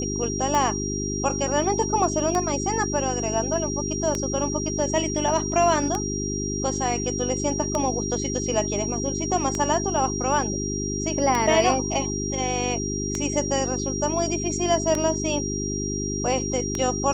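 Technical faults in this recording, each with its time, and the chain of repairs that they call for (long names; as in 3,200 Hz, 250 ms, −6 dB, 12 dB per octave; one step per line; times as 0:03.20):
mains hum 50 Hz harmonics 8 −29 dBFS
scratch tick 33 1/3 rpm −11 dBFS
whistle 5,700 Hz −30 dBFS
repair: click removal
notch filter 5,700 Hz, Q 30
hum removal 50 Hz, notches 8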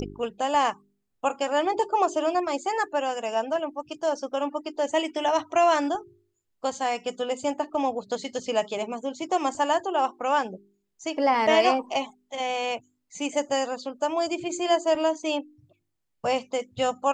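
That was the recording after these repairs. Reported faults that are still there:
none of them is left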